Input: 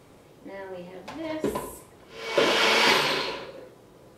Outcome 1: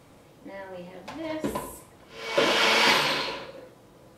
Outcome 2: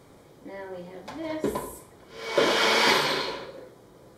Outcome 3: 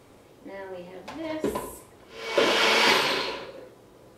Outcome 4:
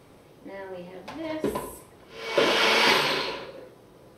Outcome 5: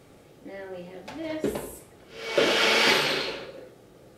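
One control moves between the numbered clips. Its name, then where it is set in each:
band-stop, frequency: 400 Hz, 2.7 kHz, 160 Hz, 7.1 kHz, 1 kHz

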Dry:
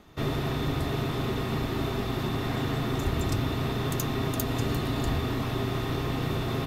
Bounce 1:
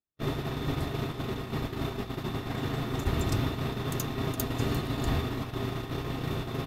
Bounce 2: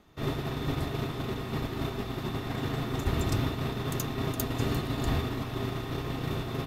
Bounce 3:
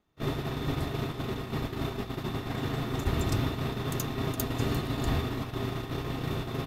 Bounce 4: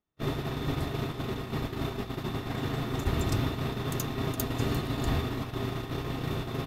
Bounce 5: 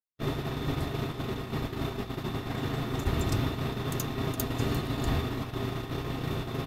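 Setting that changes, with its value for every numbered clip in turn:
gate, range: -46 dB, -6 dB, -21 dB, -34 dB, -60 dB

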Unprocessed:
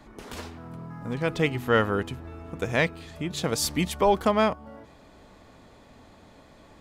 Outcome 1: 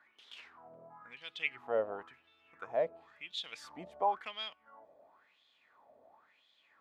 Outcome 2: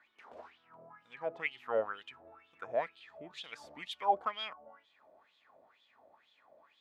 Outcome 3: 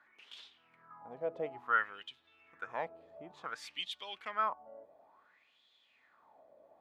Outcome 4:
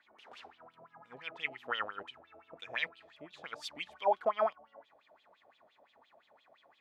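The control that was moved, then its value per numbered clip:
wah-wah, rate: 0.96 Hz, 2.1 Hz, 0.57 Hz, 5.8 Hz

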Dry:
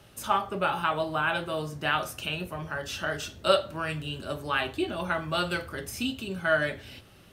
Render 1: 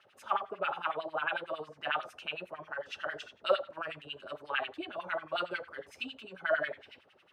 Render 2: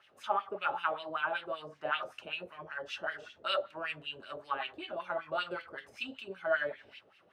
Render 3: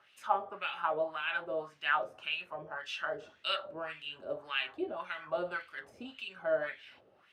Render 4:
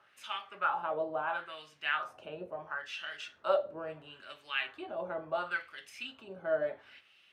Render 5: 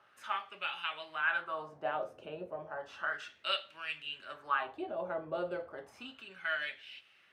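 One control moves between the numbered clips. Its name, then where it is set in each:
LFO band-pass, rate: 11 Hz, 5.2 Hz, 1.8 Hz, 0.73 Hz, 0.33 Hz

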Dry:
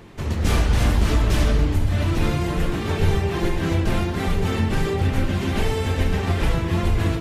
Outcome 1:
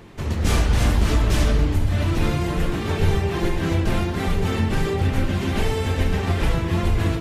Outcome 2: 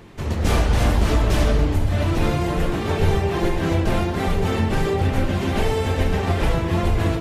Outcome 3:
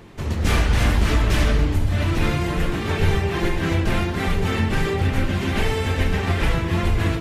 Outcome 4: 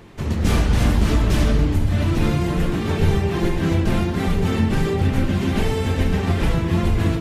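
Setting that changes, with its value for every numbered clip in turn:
dynamic bell, frequency: 7.3 kHz, 640 Hz, 2 kHz, 200 Hz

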